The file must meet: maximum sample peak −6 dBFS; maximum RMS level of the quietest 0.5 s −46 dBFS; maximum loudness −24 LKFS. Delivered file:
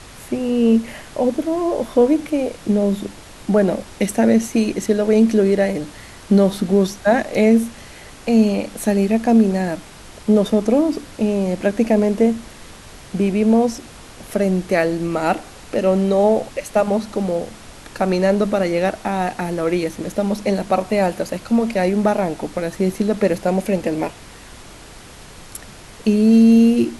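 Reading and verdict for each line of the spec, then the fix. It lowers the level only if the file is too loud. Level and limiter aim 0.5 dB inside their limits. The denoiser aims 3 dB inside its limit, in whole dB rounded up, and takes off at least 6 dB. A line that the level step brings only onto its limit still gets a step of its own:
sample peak −4.5 dBFS: out of spec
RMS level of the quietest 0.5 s −40 dBFS: out of spec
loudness −18.5 LKFS: out of spec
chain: broadband denoise 6 dB, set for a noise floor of −40 dBFS
level −6 dB

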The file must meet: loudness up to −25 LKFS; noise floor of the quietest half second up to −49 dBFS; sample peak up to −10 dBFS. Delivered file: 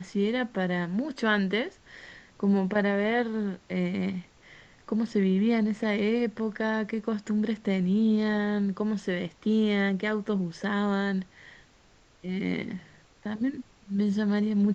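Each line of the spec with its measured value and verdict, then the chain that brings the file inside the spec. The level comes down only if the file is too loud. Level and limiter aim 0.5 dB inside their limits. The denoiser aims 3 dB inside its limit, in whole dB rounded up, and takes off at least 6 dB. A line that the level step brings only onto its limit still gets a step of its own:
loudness −28.0 LKFS: in spec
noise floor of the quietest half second −59 dBFS: in spec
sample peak −13.0 dBFS: in spec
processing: no processing needed

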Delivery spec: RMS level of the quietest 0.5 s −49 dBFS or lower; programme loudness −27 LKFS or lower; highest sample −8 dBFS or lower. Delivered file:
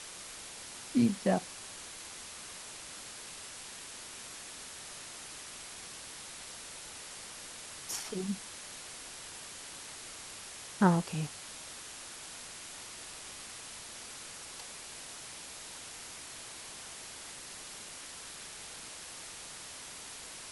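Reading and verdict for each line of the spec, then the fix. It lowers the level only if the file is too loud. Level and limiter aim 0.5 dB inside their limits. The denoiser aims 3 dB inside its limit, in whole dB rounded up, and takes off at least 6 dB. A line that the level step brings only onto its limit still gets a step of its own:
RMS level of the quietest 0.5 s −47 dBFS: out of spec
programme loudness −39.5 LKFS: in spec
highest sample −10.0 dBFS: in spec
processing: broadband denoise 6 dB, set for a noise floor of −47 dBFS

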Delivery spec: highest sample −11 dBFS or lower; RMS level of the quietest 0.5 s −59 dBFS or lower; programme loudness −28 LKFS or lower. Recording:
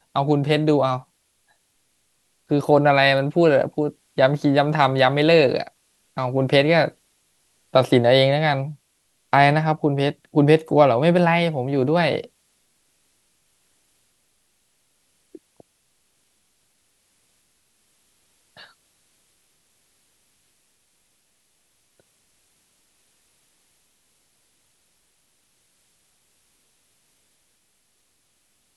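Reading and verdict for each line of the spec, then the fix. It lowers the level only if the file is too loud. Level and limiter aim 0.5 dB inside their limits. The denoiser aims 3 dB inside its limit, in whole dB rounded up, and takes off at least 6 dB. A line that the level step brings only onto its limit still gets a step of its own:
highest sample −2.5 dBFS: out of spec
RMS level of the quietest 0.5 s −67 dBFS: in spec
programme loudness −19.0 LKFS: out of spec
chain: level −9.5 dB

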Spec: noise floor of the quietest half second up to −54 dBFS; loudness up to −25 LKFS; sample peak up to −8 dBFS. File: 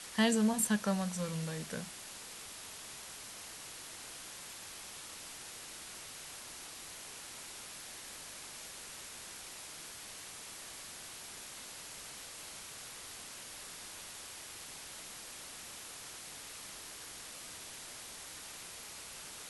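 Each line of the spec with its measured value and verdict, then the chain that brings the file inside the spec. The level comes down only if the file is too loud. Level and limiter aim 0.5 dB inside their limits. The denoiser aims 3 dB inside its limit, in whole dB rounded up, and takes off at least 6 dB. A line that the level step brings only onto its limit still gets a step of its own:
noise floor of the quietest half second −48 dBFS: out of spec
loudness −41.5 LKFS: in spec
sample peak −17.5 dBFS: in spec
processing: broadband denoise 9 dB, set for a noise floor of −48 dBFS

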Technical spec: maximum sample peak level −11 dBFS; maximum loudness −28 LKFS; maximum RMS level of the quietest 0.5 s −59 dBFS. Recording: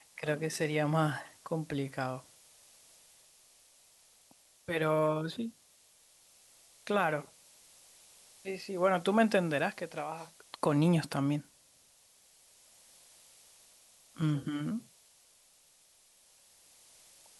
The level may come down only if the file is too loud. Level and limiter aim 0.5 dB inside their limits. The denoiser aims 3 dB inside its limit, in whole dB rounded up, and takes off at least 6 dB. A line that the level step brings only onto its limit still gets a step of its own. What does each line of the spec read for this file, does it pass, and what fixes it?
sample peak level −14.5 dBFS: in spec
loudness −32.5 LKFS: in spec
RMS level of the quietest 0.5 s −64 dBFS: in spec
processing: no processing needed

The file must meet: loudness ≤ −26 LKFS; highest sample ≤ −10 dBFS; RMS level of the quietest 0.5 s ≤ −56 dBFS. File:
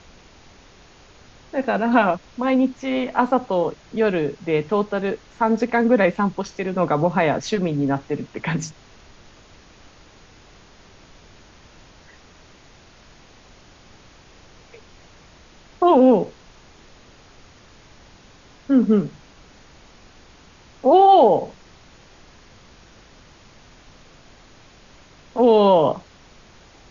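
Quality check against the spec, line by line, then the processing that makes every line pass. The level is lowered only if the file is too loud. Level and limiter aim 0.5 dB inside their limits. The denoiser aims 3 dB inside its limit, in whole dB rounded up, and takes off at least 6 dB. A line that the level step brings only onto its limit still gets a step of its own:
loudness −19.5 LKFS: out of spec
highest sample −3.5 dBFS: out of spec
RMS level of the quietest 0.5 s −49 dBFS: out of spec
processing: broadband denoise 6 dB, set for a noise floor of −49 dBFS
level −7 dB

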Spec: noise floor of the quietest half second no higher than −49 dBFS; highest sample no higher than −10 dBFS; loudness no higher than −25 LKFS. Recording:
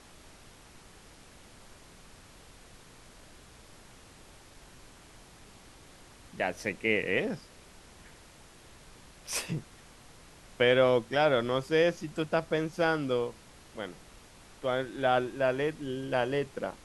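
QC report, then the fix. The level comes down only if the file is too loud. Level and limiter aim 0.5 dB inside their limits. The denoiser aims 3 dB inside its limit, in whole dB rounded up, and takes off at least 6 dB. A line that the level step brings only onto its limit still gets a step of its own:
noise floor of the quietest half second −54 dBFS: in spec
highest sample −11.5 dBFS: in spec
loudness −29.5 LKFS: in spec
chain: no processing needed

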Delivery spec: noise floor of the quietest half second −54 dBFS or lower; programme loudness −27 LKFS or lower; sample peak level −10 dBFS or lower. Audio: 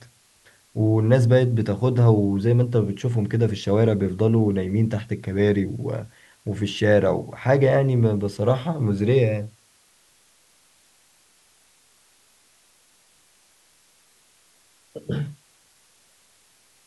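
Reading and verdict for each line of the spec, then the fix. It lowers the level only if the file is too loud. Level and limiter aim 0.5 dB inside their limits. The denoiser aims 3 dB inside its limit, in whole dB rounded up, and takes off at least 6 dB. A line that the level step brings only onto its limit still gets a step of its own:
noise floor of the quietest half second −59 dBFS: in spec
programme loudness −21.5 LKFS: out of spec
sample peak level −4.0 dBFS: out of spec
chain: level −6 dB
brickwall limiter −10.5 dBFS

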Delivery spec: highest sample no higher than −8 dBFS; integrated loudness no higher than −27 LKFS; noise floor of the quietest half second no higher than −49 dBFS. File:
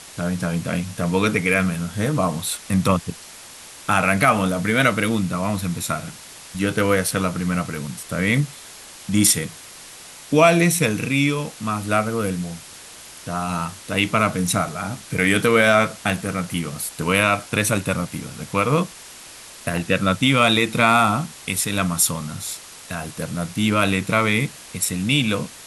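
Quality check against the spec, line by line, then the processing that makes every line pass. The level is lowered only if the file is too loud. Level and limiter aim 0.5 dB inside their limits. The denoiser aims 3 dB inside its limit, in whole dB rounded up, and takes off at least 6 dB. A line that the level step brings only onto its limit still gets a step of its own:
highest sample −3.5 dBFS: out of spec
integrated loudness −20.5 LKFS: out of spec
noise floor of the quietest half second −41 dBFS: out of spec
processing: broadband denoise 6 dB, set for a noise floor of −41 dBFS
level −7 dB

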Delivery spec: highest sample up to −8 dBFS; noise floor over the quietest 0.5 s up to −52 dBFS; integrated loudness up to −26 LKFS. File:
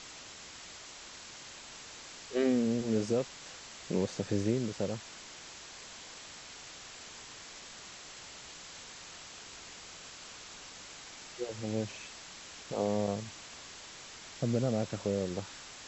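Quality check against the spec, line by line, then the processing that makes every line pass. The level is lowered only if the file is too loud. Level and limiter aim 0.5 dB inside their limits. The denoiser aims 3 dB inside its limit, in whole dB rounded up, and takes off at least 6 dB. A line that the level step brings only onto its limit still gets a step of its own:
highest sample −18.0 dBFS: in spec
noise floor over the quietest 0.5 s −49 dBFS: out of spec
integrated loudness −37.5 LKFS: in spec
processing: broadband denoise 6 dB, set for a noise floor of −49 dBFS

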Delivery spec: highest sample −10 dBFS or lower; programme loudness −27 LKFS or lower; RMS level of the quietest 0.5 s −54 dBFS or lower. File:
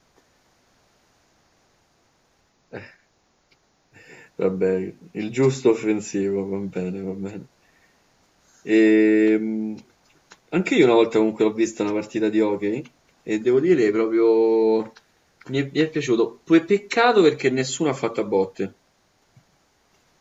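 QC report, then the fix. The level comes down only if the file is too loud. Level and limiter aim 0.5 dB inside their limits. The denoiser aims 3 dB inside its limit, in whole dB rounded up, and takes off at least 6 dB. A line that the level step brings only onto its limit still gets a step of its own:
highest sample −3.5 dBFS: out of spec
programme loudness −21.0 LKFS: out of spec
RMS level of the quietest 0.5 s −65 dBFS: in spec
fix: level −6.5 dB
brickwall limiter −10.5 dBFS

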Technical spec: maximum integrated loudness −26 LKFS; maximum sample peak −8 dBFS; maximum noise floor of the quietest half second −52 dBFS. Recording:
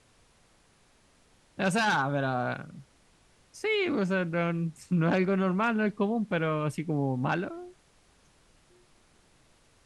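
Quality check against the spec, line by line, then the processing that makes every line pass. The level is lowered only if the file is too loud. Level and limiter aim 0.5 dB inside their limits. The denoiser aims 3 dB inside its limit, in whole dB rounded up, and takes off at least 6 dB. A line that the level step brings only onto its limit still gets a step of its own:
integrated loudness −28.5 LKFS: in spec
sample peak −15.5 dBFS: in spec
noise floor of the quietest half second −63 dBFS: in spec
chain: no processing needed

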